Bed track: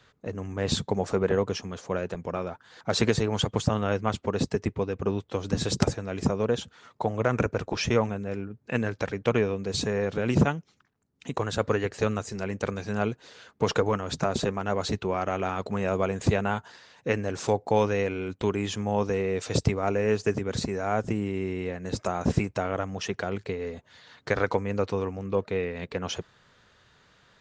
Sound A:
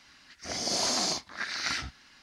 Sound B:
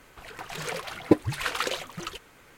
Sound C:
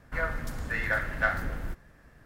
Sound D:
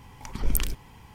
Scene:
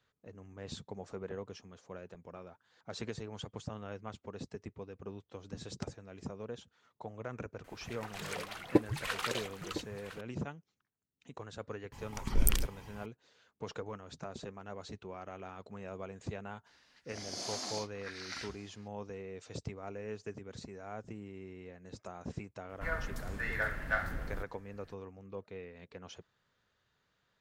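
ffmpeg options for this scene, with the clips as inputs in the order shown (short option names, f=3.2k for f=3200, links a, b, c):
-filter_complex "[0:a]volume=-17.5dB[a];[2:a]aecho=1:1:1008:0.188[b];[1:a]aecho=1:1:919:0.075[c];[b]atrim=end=2.57,asetpts=PTS-STARTPTS,volume=-7dB,afade=t=in:d=0.004:c=hsin,afade=t=out:st=2.566:d=0.004:c=hsin,adelay=7640[d];[4:a]atrim=end=1.14,asetpts=PTS-STARTPTS,volume=-2.5dB,afade=t=in:d=0.004:c=hsin,afade=t=out:st=1.136:d=0.004:c=hsin,adelay=11920[e];[c]atrim=end=2.22,asetpts=PTS-STARTPTS,volume=-12dB,afade=t=in:d=0.004:c=hsin,afade=t=out:st=2.216:d=0.004:c=hsin,adelay=16660[f];[3:a]atrim=end=2.25,asetpts=PTS-STARTPTS,volume=-6dB,afade=t=in:d=0.004:c=hsin,afade=t=out:st=2.246:d=0.004:c=hsin,adelay=22690[g];[a][d][e][f][g]amix=inputs=5:normalize=0"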